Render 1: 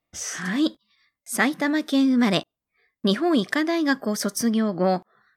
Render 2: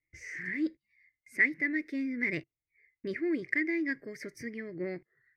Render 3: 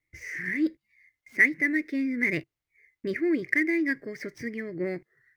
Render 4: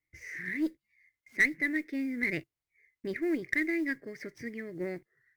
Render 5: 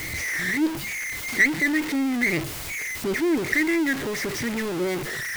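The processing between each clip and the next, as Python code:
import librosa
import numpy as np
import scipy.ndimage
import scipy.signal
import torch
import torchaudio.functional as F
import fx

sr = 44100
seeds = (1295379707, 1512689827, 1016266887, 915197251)

y1 = fx.curve_eq(x, sr, hz=(140.0, 210.0, 330.0, 490.0, 780.0, 1300.0, 2100.0, 3300.0, 4700.0, 7900.0), db=(0, -18, -2, -10, -27, -22, 10, -28, -16, -23))
y1 = y1 * librosa.db_to_amplitude(-5.0)
y2 = scipy.ndimage.median_filter(y1, 5, mode='constant')
y2 = y2 * librosa.db_to_amplitude(5.5)
y3 = fx.mod_noise(y2, sr, seeds[0], snr_db=33)
y3 = fx.cheby_harmonics(y3, sr, harmonics=(4, 5, 7), levels_db=(-26, -24, -27), full_scale_db=-8.5)
y3 = y3 * librosa.db_to_amplitude(-5.5)
y4 = y3 + 0.5 * 10.0 ** (-29.5 / 20.0) * np.sign(y3)
y4 = y4 * librosa.db_to_amplitude(5.0)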